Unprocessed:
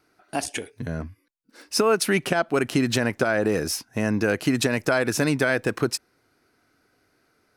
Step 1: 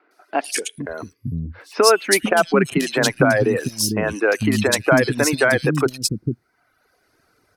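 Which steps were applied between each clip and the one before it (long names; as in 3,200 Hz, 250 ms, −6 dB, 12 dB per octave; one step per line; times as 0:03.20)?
three-band delay without the direct sound mids, highs, lows 110/450 ms, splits 280/2,800 Hz
reverb reduction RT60 0.96 s
level +7.5 dB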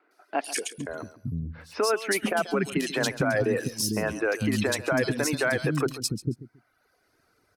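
brickwall limiter −10 dBFS, peak gain reduction 8.5 dB
repeating echo 137 ms, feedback 20%, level −15.5 dB
level −5.5 dB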